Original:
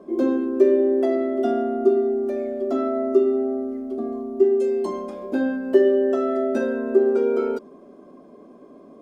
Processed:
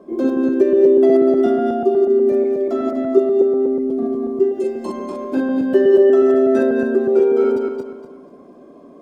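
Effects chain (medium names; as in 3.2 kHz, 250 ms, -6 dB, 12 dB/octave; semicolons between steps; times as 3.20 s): backward echo that repeats 122 ms, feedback 53%, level -2 dB; trim +1 dB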